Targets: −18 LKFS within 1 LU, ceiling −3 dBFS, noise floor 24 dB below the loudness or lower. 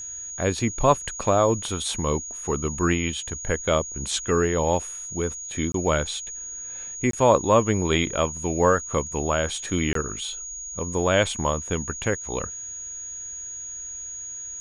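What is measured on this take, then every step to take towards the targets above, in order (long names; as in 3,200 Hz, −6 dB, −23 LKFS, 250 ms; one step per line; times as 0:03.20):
number of dropouts 3; longest dropout 23 ms; interfering tone 6,700 Hz; level of the tone −33 dBFS; integrated loudness −25.0 LKFS; sample peak −5.0 dBFS; target loudness −18.0 LKFS
→ repair the gap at 0:05.72/0:07.11/0:09.93, 23 ms
notch filter 6,700 Hz, Q 30
level +7 dB
brickwall limiter −3 dBFS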